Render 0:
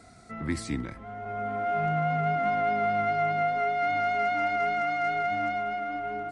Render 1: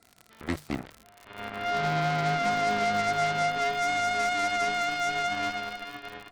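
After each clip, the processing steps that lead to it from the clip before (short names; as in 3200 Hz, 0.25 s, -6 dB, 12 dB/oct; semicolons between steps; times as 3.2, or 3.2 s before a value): added harmonics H 7 -15 dB, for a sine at -17 dBFS; crackle 70/s -35 dBFS; notches 50/100/150 Hz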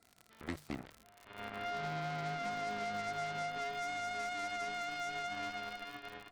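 compressor, threshold -28 dBFS, peak gain reduction 6.5 dB; gain -7 dB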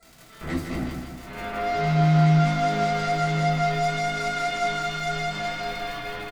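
limiter -33 dBFS, peak gain reduction 6.5 dB; feedback echo 0.16 s, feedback 53%, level -6 dB; reverb RT60 0.30 s, pre-delay 3 ms, DRR -6.5 dB; gain +5 dB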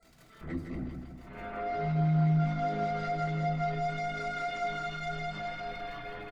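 formant sharpening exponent 1.5; gain -8 dB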